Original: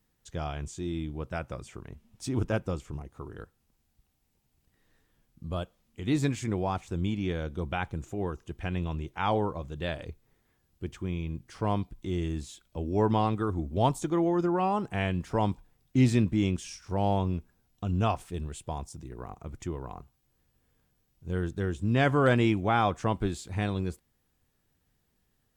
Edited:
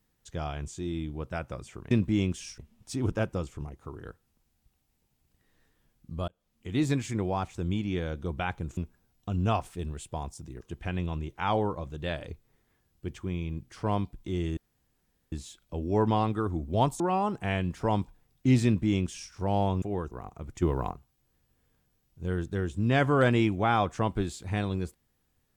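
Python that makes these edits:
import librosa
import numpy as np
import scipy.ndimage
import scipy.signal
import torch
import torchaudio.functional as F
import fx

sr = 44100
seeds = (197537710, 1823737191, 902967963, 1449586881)

y = fx.edit(x, sr, fx.fade_in_span(start_s=5.61, length_s=0.4),
    fx.swap(start_s=8.1, length_s=0.29, other_s=17.32, other_length_s=1.84),
    fx.insert_room_tone(at_s=12.35, length_s=0.75),
    fx.cut(start_s=14.03, length_s=0.47),
    fx.duplicate(start_s=16.15, length_s=0.67, to_s=1.91),
    fx.clip_gain(start_s=19.67, length_s=0.29, db=9.0), tone=tone)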